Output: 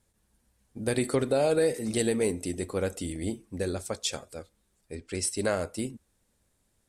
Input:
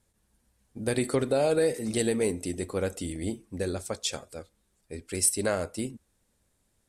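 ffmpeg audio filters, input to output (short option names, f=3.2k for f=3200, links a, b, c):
-filter_complex "[0:a]asettb=1/sr,asplit=3[a][b][c];[a]atrim=end=4.954[d];[b]atrim=start=4.95:end=5.37,asetpts=PTS-STARTPTS,afade=t=in:d=0.004:c=qsin,afade=t=out:st=0.416:d=0.004:c=qsin,lowpass=6.6k[e];[c]atrim=start=5.366[f];[d][e]acrossfade=d=0.004:c1=hsin:c2=qsin[g];[g][f]acrossfade=d=0.004:c1=qsin:c2=hsin"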